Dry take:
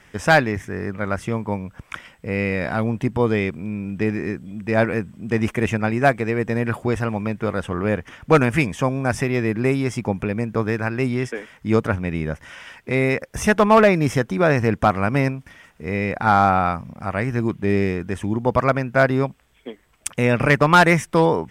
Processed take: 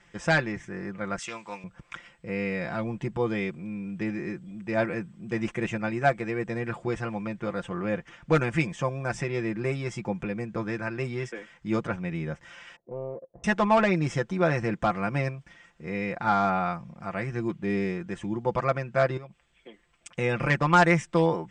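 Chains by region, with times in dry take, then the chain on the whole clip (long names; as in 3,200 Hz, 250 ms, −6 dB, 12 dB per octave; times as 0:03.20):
0:01.18–0:01.64: meter weighting curve ITU-R 468 + highs frequency-modulated by the lows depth 0.16 ms
0:12.76–0:13.44: transistor ladder low-pass 700 Hz, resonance 55% + low-shelf EQ 87 Hz −9.5 dB + highs frequency-modulated by the lows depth 0.47 ms
0:19.17–0:20.13: parametric band 2,500 Hz +4 dB 0.79 octaves + downward compressor 3 to 1, threshold −33 dBFS
whole clip: Chebyshev low-pass filter 8,000 Hz, order 4; comb filter 5.8 ms, depth 69%; level −8.5 dB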